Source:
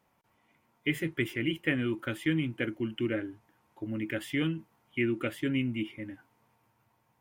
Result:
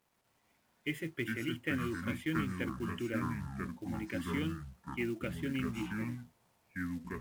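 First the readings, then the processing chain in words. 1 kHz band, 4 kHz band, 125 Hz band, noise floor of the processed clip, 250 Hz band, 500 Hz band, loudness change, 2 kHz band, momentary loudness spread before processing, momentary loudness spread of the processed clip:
+4.5 dB, -6.5 dB, -3.0 dB, -75 dBFS, -4.5 dB, -6.5 dB, -5.5 dB, -5.0 dB, 10 LU, 7 LU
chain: companded quantiser 6-bit; ever faster or slower copies 119 ms, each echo -5 st, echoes 2; trim -7 dB

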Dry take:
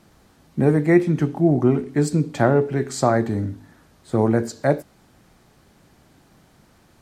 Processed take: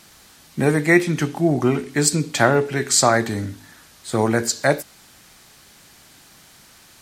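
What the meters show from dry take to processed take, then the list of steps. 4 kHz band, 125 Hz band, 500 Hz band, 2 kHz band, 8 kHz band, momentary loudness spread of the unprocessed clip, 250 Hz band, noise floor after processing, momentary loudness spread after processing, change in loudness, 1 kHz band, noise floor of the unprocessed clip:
+14.0 dB, -2.0 dB, 0.0 dB, +9.0 dB, +15.0 dB, 9 LU, -1.5 dB, -50 dBFS, 11 LU, +1.0 dB, +3.5 dB, -56 dBFS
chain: tilt shelf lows -9 dB, about 1.3 kHz; trim +6.5 dB

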